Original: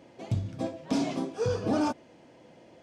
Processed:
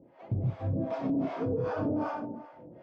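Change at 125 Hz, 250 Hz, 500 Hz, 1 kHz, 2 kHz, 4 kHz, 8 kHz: +1.5 dB, -1.0 dB, -1.0 dB, -1.5 dB, -2.5 dB, under -10 dB, under -20 dB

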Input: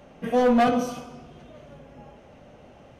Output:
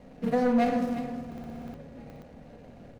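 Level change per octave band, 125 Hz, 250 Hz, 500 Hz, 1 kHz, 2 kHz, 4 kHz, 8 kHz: +0.5 dB, -2.0 dB, -5.5 dB, -6.0 dB, -5.5 dB, -8.5 dB, under -10 dB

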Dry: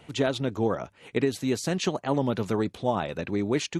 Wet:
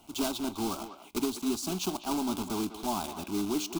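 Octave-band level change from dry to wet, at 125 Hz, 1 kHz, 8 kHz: -12.5 dB, -3.0 dB, +2.0 dB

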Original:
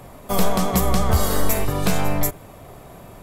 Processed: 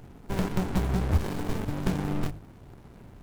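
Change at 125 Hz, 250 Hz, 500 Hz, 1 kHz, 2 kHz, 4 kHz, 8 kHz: -5.0 dB, -5.5 dB, -11.0 dB, -12.5 dB, -9.5 dB, -13.0 dB, -19.0 dB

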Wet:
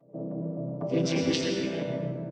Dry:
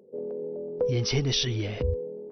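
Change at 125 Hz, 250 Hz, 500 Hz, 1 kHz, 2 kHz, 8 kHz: -4.5 dB, +6.5 dB, -1.5 dB, +4.0 dB, +0.5 dB, no reading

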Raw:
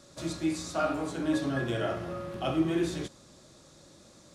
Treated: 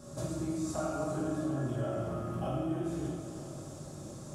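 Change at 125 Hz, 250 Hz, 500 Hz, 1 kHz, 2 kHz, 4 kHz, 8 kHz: +1.5 dB, -4.0 dB, -3.5 dB, -4.5 dB, -12.0 dB, -11.5 dB, -2.0 dB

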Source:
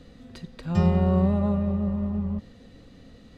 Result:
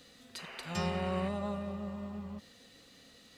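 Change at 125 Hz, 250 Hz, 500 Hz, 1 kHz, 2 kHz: -16.0 dB, -14.0 dB, -8.5 dB, -5.0 dB, +1.5 dB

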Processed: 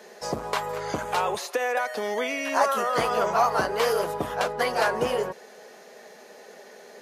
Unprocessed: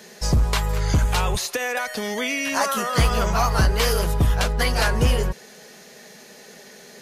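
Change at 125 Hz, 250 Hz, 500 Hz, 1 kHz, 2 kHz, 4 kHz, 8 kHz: -19.5 dB, -7.5 dB, +1.5 dB, +1.0 dB, -3.5 dB, -7.5 dB, -9.0 dB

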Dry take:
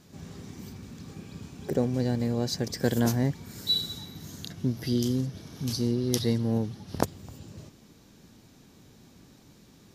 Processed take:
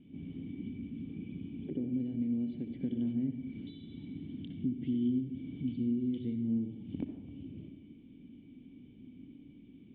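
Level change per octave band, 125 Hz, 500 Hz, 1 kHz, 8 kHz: -12.0 dB, -16.0 dB, under -25 dB, under -40 dB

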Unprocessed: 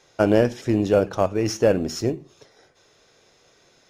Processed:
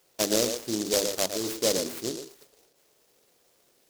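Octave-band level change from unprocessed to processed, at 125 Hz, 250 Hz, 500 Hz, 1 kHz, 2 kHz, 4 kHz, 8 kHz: -17.0 dB, -9.5 dB, -8.5 dB, -9.5 dB, -6.0 dB, +6.5 dB, +8.5 dB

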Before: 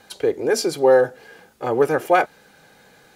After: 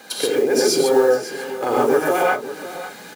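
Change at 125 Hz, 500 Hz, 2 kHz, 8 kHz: -2.5 dB, +1.0 dB, +1.5 dB, +7.5 dB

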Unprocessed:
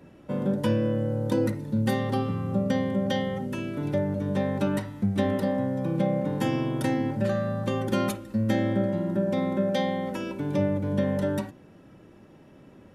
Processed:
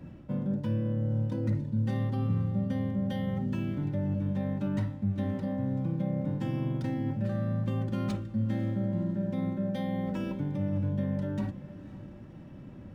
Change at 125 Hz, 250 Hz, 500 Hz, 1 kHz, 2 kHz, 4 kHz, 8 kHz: 0.0 dB, -4.5 dB, -11.0 dB, -10.5 dB, -11.0 dB, -12.5 dB, under -15 dB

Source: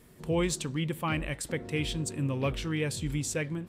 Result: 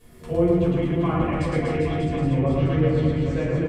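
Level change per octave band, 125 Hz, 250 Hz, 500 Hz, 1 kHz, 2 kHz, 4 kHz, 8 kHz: +10.0 dB, +10.5 dB, +11.0 dB, +8.5 dB, +1.5 dB, -4.0 dB, under -10 dB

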